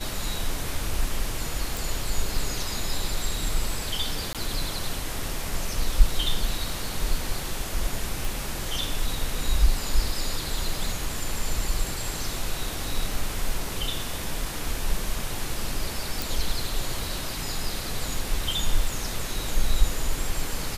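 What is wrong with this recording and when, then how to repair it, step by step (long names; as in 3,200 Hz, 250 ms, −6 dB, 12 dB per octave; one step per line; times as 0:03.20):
0:01.77: click
0:04.33–0:04.35: drop-out 17 ms
0:08.25: click
0:16.22: click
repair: click removal
repair the gap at 0:04.33, 17 ms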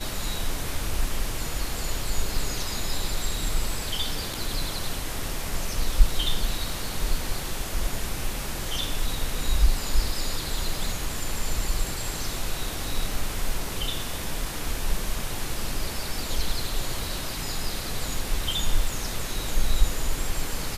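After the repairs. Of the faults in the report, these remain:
none of them is left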